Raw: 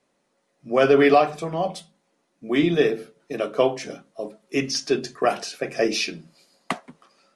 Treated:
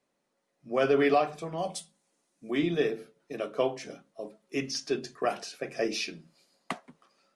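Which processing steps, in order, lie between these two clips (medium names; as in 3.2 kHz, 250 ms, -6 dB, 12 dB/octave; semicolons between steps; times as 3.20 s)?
1.58–2.51 s: peaking EQ 8.6 kHz +13 dB 1.5 oct; trim -8 dB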